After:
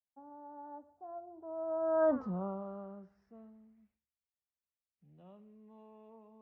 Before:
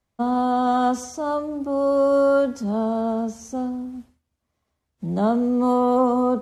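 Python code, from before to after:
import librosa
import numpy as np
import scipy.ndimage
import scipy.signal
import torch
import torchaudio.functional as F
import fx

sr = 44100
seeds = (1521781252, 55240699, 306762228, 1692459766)

y = fx.doppler_pass(x, sr, speed_mps=49, closest_m=4.0, pass_at_s=2.18)
y = fx.filter_sweep_lowpass(y, sr, from_hz=730.0, to_hz=2500.0, start_s=1.16, end_s=4.15, q=3.8)
y = F.gain(torch.from_numpy(y), -6.5).numpy()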